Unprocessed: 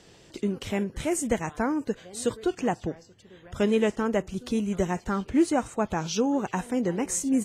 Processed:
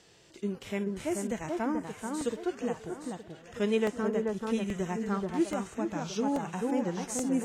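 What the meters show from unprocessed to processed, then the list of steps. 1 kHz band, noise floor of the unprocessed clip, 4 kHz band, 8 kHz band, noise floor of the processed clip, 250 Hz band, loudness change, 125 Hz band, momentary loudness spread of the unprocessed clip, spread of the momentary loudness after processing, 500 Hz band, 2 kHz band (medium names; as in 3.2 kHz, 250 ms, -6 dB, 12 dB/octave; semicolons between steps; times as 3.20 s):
-5.0 dB, -55 dBFS, -5.5 dB, -7.5 dB, -55 dBFS, -4.5 dB, -5.0 dB, -5.0 dB, 8 LU, 8 LU, -4.0 dB, -5.0 dB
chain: bass shelf 470 Hz -6.5 dB; echo whose repeats swap between lows and highs 434 ms, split 1.6 kHz, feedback 52%, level -3 dB; harmonic-percussive split percussive -12 dB; crackling interface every 0.83 s, samples 64, repeat, from 0.55 s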